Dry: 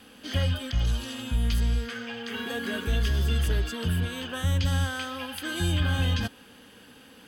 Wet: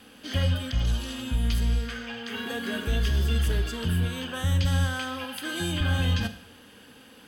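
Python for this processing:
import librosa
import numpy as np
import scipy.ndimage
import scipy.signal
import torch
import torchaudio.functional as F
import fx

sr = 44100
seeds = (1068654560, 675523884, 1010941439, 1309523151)

y = fx.highpass(x, sr, hz=140.0, slope=12, at=(5.24, 5.81))
y = fx.rev_schroeder(y, sr, rt60_s=0.63, comb_ms=31, drr_db=10.0)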